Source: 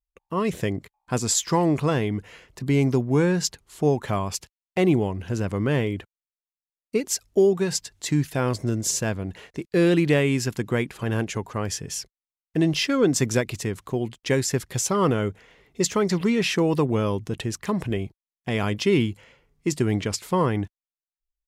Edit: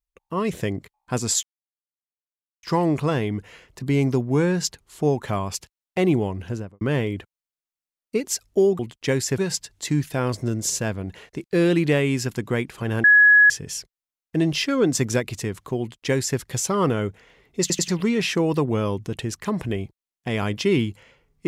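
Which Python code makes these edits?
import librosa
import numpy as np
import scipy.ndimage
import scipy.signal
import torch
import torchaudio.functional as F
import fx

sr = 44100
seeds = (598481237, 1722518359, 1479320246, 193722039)

y = fx.studio_fade_out(x, sr, start_s=5.23, length_s=0.38)
y = fx.edit(y, sr, fx.insert_silence(at_s=1.43, length_s=1.2),
    fx.bleep(start_s=11.25, length_s=0.46, hz=1680.0, db=-9.5),
    fx.duplicate(start_s=14.01, length_s=0.59, to_s=7.59),
    fx.stutter_over(start_s=15.82, slice_s=0.09, count=3), tone=tone)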